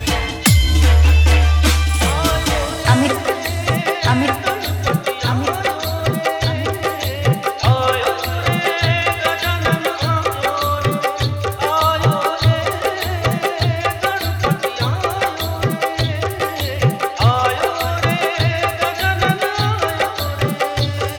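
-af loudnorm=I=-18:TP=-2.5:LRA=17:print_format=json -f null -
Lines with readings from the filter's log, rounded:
"input_i" : "-17.3",
"input_tp" : "-3.7",
"input_lra" : "3.0",
"input_thresh" : "-27.3",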